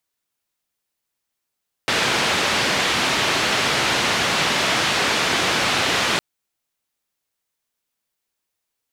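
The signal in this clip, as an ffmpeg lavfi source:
ffmpeg -f lavfi -i "anoisesrc=color=white:duration=4.31:sample_rate=44100:seed=1,highpass=frequency=99,lowpass=frequency=3500,volume=-7.5dB" out.wav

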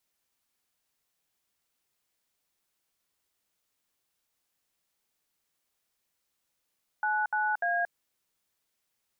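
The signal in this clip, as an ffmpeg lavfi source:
ffmpeg -f lavfi -i "aevalsrc='0.0398*clip(min(mod(t,0.296),0.229-mod(t,0.296))/0.002,0,1)*(eq(floor(t/0.296),0)*(sin(2*PI*852*mod(t,0.296))+sin(2*PI*1477*mod(t,0.296)))+eq(floor(t/0.296),1)*(sin(2*PI*852*mod(t,0.296))+sin(2*PI*1477*mod(t,0.296)))+eq(floor(t/0.296),2)*(sin(2*PI*697*mod(t,0.296))+sin(2*PI*1633*mod(t,0.296))))':duration=0.888:sample_rate=44100" out.wav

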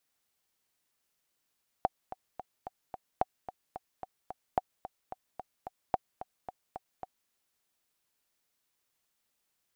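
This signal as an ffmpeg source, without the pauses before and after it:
ffmpeg -f lavfi -i "aevalsrc='pow(10,(-12.5-14*gte(mod(t,5*60/220),60/220))/20)*sin(2*PI*751*mod(t,60/220))*exp(-6.91*mod(t,60/220)/0.03)':duration=5.45:sample_rate=44100" out.wav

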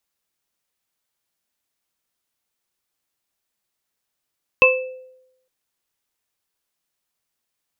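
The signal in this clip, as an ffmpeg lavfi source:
ffmpeg -f lavfi -i "aevalsrc='0.251*pow(10,-3*t/0.86)*sin(2*PI*514*t)+0.178*pow(10,-3*t/0.24)*sin(2*PI*1050*t)+0.447*pow(10,-3*t/0.4)*sin(2*PI*2630*t)':duration=0.86:sample_rate=44100" out.wav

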